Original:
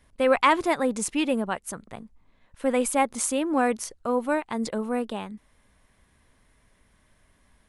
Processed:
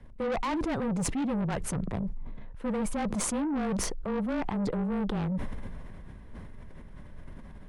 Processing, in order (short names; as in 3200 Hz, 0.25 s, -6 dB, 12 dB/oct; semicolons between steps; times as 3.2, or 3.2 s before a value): LPF 1500 Hz 6 dB/oct; low shelf 410 Hz +11.5 dB; reverse; compressor 4:1, threshold -29 dBFS, peak gain reduction 14.5 dB; reverse; frequency shift -26 Hz; soft clip -33.5 dBFS, distortion -8 dB; sustainer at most 23 dB/s; gain +6.5 dB